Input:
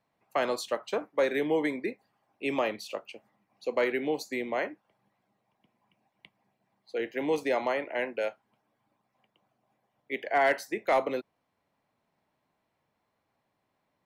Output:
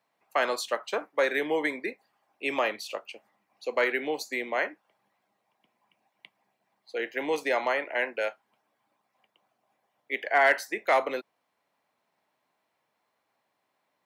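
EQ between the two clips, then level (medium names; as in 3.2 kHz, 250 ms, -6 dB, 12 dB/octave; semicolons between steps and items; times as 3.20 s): high-pass 600 Hz 6 dB/octave; dynamic bell 1.6 kHz, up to +4 dB, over -44 dBFS, Q 1.8; +3.5 dB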